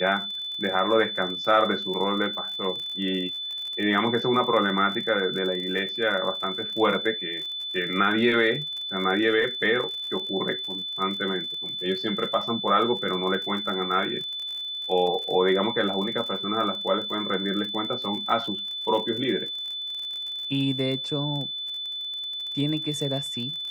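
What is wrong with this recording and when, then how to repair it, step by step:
surface crackle 49 per second −33 dBFS
whistle 3,500 Hz −30 dBFS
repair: click removal
notch filter 3,500 Hz, Q 30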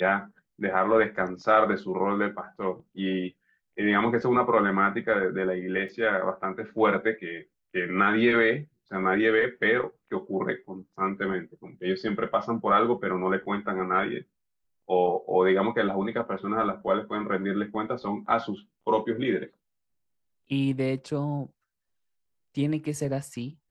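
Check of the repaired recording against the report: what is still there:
none of them is left

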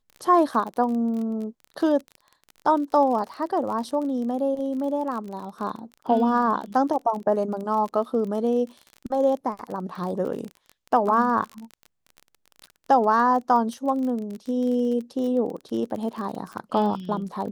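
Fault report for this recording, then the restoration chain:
surface crackle 33 per second −31 dBFS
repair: click removal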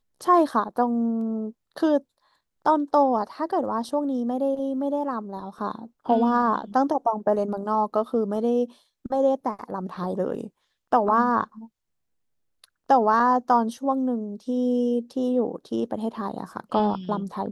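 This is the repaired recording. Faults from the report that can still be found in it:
none of them is left

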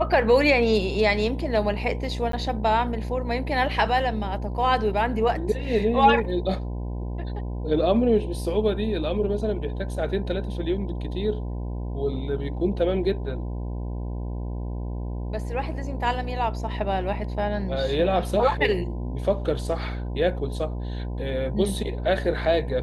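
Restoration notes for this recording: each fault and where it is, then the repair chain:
mains buzz 60 Hz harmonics 17 −30 dBFS
0:02.32–0:02.33: drop-out 13 ms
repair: hum removal 60 Hz, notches 17
repair the gap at 0:02.32, 13 ms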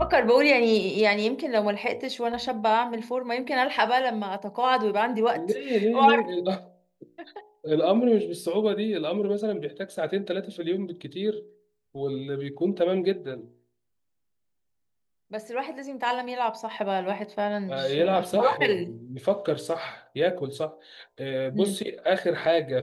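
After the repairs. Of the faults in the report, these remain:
none of them is left

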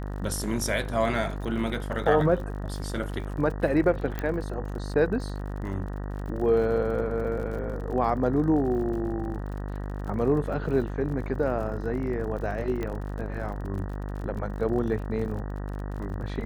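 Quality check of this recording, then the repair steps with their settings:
mains buzz 50 Hz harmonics 38 −33 dBFS
surface crackle 53 per second −37 dBFS
0:04.19: click −17 dBFS
0:12.83: click −19 dBFS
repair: click removal
hum removal 50 Hz, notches 38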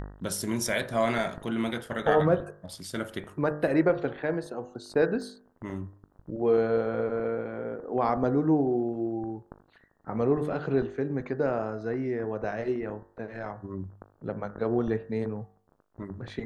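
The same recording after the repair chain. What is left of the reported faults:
none of them is left

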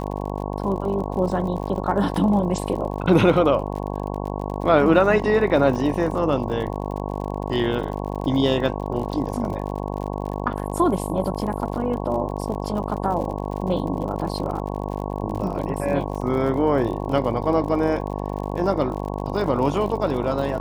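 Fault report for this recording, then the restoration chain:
mains buzz 50 Hz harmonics 22 −28 dBFS
surface crackle 53 per second −31 dBFS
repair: click removal
hum removal 50 Hz, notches 22

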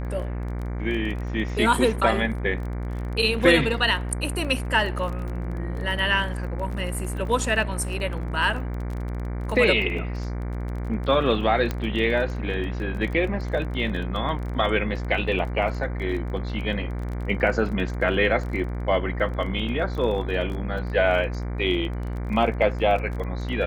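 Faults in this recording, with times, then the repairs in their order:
mains buzz 60 Hz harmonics 39 −29 dBFS
surface crackle 24 per second −32 dBFS
0:11.71: click −13 dBFS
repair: click removal
hum removal 60 Hz, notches 39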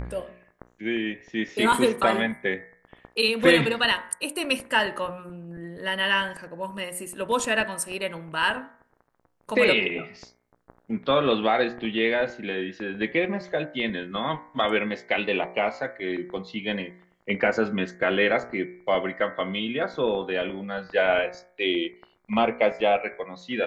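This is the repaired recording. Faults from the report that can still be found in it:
none of them is left

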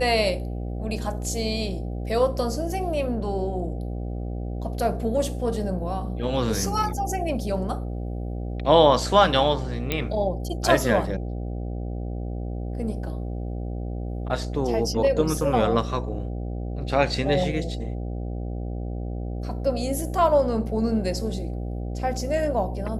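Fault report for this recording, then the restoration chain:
mains buzz 60 Hz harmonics 13 −30 dBFS
0:09.92: click −9 dBFS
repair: click removal
hum removal 60 Hz, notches 13

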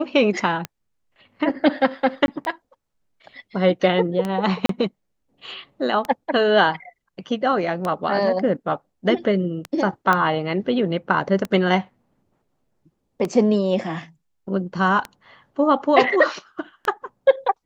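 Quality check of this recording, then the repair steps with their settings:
scratch tick 33 1/3 rpm −12 dBFS
0:02.26–0:02.28: drop-out 21 ms
0:04.66–0:04.69: drop-out 33 ms
0:10.13: click −7 dBFS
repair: click removal
repair the gap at 0:02.26, 21 ms
repair the gap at 0:04.66, 33 ms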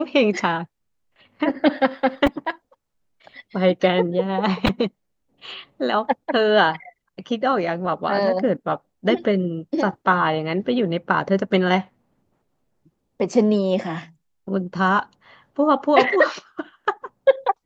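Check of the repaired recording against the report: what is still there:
none of them is left

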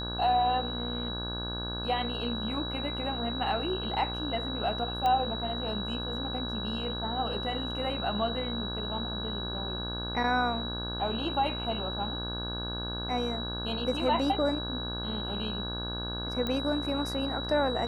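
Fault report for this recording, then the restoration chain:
mains buzz 60 Hz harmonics 28 −37 dBFS
whistle 3,900 Hz −36 dBFS
0:05.06: click −18 dBFS
0:16.47: click −19 dBFS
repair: click removal
hum removal 60 Hz, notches 28
notch filter 3,900 Hz, Q 30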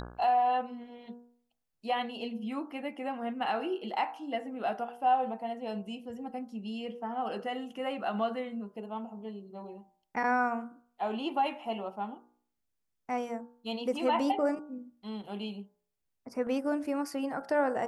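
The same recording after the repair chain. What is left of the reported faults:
0:16.47: click

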